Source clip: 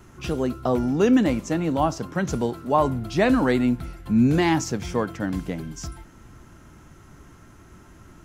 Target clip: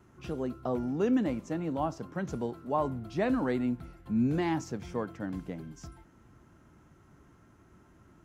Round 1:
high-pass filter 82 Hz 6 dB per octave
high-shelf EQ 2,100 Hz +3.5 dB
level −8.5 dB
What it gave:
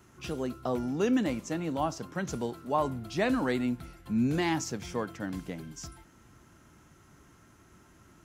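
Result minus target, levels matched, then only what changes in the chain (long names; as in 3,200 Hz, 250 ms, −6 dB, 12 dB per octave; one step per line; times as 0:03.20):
4,000 Hz band +7.5 dB
change: high-shelf EQ 2,100 Hz −8 dB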